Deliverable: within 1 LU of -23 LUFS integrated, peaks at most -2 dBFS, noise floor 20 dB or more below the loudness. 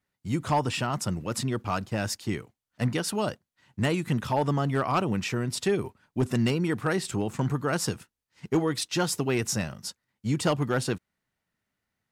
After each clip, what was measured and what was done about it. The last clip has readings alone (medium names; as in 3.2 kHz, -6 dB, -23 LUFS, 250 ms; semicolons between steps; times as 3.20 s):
clipped samples 0.3%; clipping level -17.0 dBFS; loudness -28.5 LUFS; peak level -17.0 dBFS; loudness target -23.0 LUFS
-> clip repair -17 dBFS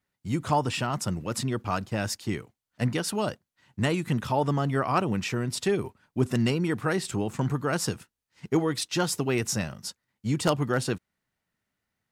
clipped samples 0.0%; loudness -28.5 LUFS; peak level -8.0 dBFS; loudness target -23.0 LUFS
-> trim +5.5 dB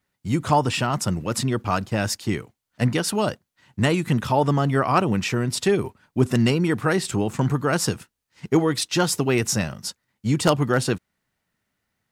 loudness -23.0 LUFS; peak level -2.5 dBFS; noise floor -80 dBFS